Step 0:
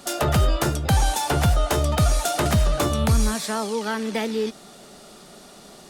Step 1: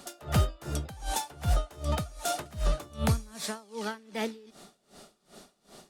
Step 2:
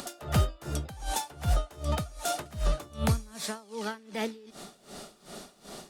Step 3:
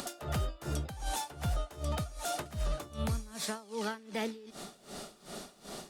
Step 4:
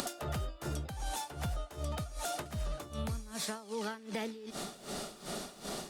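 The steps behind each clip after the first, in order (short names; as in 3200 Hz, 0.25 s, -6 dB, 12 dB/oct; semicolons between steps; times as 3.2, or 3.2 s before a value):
dB-linear tremolo 2.6 Hz, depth 25 dB; gain -4 dB
upward compressor, threshold -35 dBFS
limiter -25 dBFS, peak gain reduction 10 dB
compressor 3:1, threshold -46 dBFS, peak gain reduction 12.5 dB; gain +8 dB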